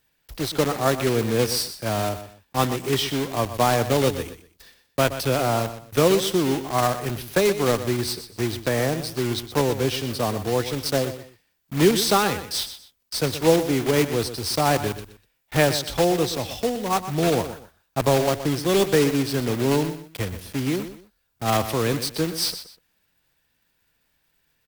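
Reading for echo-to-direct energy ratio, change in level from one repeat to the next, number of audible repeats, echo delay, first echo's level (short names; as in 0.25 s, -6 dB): -11.5 dB, -11.5 dB, 2, 0.123 s, -12.0 dB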